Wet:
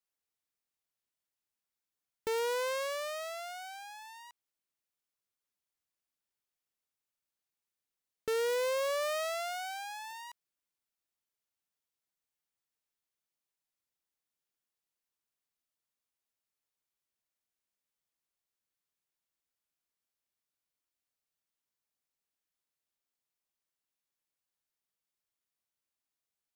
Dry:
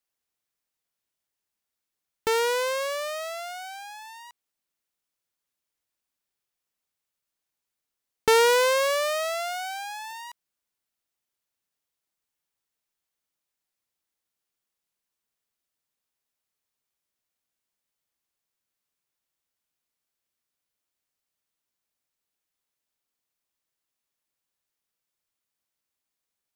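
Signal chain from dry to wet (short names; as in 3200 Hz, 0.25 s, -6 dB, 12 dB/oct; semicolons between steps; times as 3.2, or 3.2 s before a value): 8.57–9.01 high shelf 5900 Hz -3.5 dB; overloaded stage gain 23 dB; gain -6.5 dB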